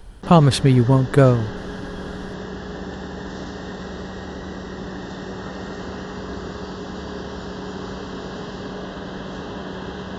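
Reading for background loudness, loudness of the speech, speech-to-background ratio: −32.0 LKFS, −16.0 LKFS, 16.0 dB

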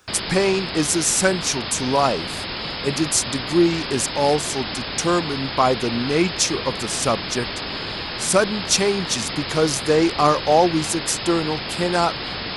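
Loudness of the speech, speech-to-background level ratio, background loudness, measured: −21.0 LKFS, 6.0 dB, −27.0 LKFS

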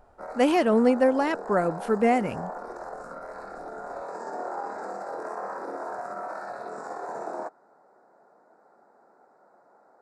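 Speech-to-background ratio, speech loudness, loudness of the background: 13.5 dB, −23.5 LKFS, −37.0 LKFS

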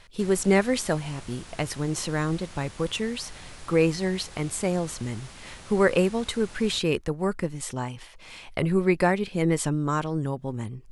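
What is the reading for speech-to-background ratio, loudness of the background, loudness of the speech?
18.5 dB, −45.0 LKFS, −26.5 LKFS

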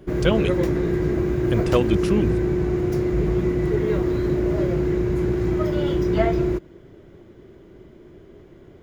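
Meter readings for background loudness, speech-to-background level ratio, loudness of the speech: −22.5 LKFS, −2.5 dB, −25.0 LKFS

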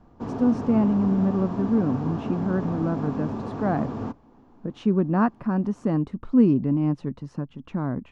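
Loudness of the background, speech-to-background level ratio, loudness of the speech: −31.5 LKFS, 7.0 dB, −24.5 LKFS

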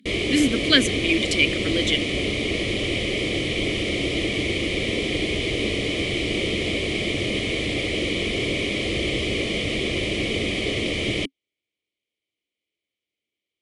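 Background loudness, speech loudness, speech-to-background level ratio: −24.0 LKFS, −21.5 LKFS, 2.5 dB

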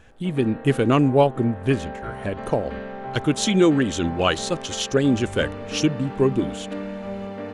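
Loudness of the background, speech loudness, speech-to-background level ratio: −34.5 LKFS, −22.0 LKFS, 12.5 dB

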